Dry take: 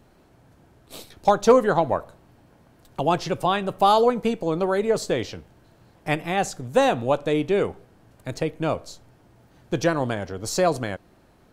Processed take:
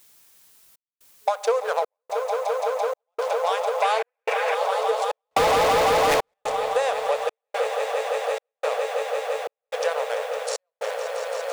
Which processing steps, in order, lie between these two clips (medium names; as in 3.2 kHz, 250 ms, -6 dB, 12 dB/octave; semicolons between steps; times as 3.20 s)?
hysteresis with a dead band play -22.5 dBFS; on a send: echo with a slow build-up 169 ms, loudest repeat 8, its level -11 dB; on the sum: FFT band-pass 430–11000 Hz; 3.82–4.55 s: high-order bell 2 kHz +12.5 dB 1 oct; 5.31–6.34 s: waveshaping leveller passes 5; word length cut 10-bit, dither triangular; treble shelf 5.7 kHz +7 dB; spring tank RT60 3.3 s, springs 43 ms, DRR 17 dB; trance gate "xxxxxxxxx...x" 179 bpm -60 dB; compression, threshold -18 dBFS, peak gain reduction 8 dB